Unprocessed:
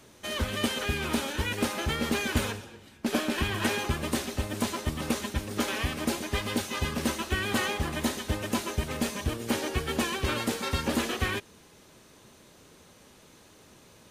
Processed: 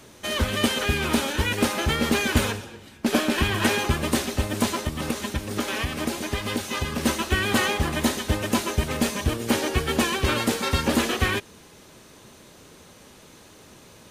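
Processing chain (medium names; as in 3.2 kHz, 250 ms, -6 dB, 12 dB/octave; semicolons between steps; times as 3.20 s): 4.79–7.06 s: compression, threshold -29 dBFS, peak gain reduction 7 dB; trim +6 dB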